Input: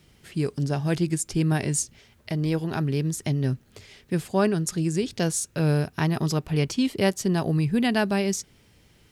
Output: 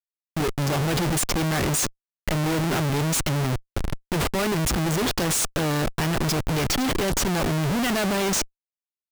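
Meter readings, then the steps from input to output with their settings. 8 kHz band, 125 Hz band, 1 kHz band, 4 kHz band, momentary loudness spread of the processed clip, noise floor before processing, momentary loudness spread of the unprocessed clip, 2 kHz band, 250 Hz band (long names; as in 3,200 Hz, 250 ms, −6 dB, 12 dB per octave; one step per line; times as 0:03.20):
+5.0 dB, −0.5 dB, +5.5 dB, +7.0 dB, 6 LU, −59 dBFS, 7 LU, +5.0 dB, −1.0 dB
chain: low-shelf EQ 350 Hz −9 dB
automatic gain control gain up to 16 dB
comparator with hysteresis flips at −26.5 dBFS
level −5 dB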